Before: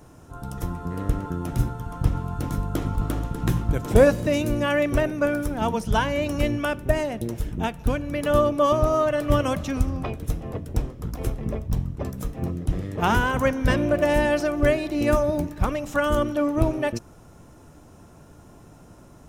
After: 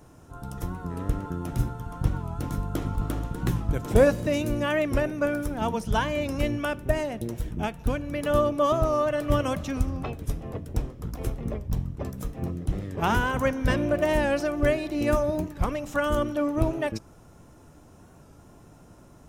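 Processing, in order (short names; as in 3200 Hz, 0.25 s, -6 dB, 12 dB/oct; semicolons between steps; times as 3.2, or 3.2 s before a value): record warp 45 rpm, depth 100 cents; gain -3 dB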